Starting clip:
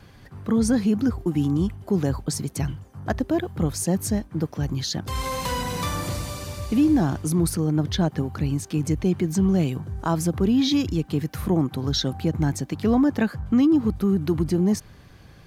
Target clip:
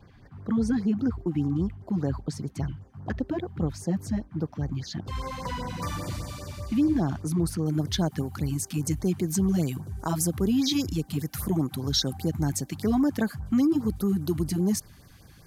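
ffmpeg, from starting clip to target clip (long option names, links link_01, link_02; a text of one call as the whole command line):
ffmpeg -i in.wav -af "asetnsamples=nb_out_samples=441:pad=0,asendcmd='5.82 equalizer g -5;7.66 equalizer g 11',equalizer=frequency=12000:width_type=o:width=1.7:gain=-15,afftfilt=real='re*(1-between(b*sr/1024,400*pow(3400/400,0.5+0.5*sin(2*PI*5*pts/sr))/1.41,400*pow(3400/400,0.5+0.5*sin(2*PI*5*pts/sr))*1.41))':imag='im*(1-between(b*sr/1024,400*pow(3400/400,0.5+0.5*sin(2*PI*5*pts/sr))/1.41,400*pow(3400/400,0.5+0.5*sin(2*PI*5*pts/sr))*1.41))':win_size=1024:overlap=0.75,volume=-4dB" out.wav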